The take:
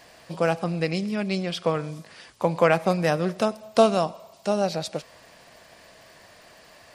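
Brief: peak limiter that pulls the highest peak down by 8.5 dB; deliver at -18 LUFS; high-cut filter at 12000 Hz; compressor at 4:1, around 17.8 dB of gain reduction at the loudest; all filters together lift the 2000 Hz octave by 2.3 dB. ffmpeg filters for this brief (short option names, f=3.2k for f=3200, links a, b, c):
-af "lowpass=12k,equalizer=f=2k:t=o:g=3,acompressor=threshold=-35dB:ratio=4,volume=23dB,alimiter=limit=-4dB:level=0:latency=1"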